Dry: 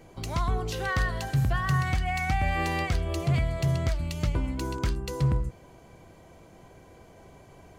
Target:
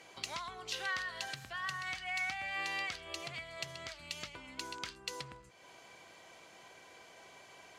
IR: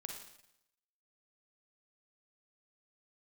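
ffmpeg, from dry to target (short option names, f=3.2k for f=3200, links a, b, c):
-af "acompressor=threshold=-37dB:ratio=3,bandpass=f=3.5k:t=q:w=0.72:csg=0,volume=7dB"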